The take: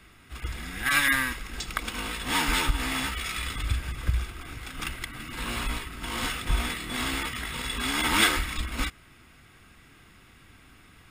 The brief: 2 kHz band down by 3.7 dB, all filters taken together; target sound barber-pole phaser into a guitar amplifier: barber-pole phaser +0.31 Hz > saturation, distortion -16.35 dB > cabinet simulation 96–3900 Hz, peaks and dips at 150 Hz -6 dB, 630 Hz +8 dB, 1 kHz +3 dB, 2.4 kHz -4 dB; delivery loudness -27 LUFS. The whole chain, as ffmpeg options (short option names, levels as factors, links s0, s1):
-filter_complex "[0:a]equalizer=f=2000:t=o:g=-3.5,asplit=2[s0][s1];[s1]afreqshift=0.31[s2];[s0][s2]amix=inputs=2:normalize=1,asoftclip=threshold=0.0891,highpass=96,equalizer=f=150:t=q:w=4:g=-6,equalizer=f=630:t=q:w=4:g=8,equalizer=f=1000:t=q:w=4:g=3,equalizer=f=2400:t=q:w=4:g=-4,lowpass=f=3900:w=0.5412,lowpass=f=3900:w=1.3066,volume=2.82"